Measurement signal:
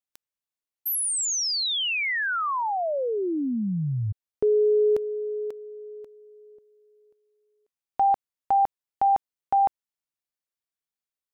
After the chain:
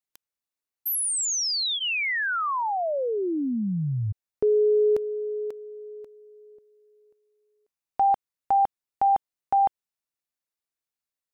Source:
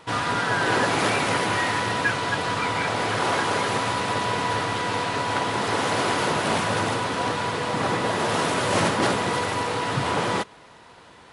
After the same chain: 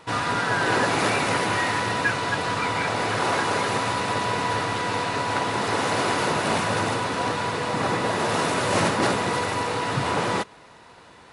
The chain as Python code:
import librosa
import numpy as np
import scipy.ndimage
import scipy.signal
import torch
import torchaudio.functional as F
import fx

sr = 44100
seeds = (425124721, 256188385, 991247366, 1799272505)

y = fx.notch(x, sr, hz=3200.0, q=17.0)